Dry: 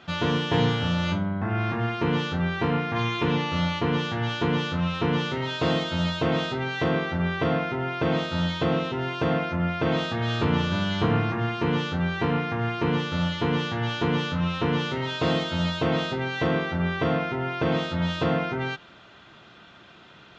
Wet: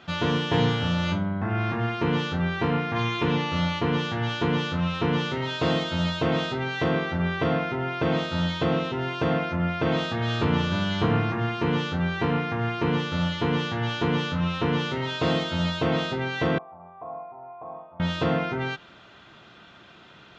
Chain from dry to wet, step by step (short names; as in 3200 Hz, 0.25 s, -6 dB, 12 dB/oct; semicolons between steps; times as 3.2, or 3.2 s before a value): 16.58–18 vocal tract filter a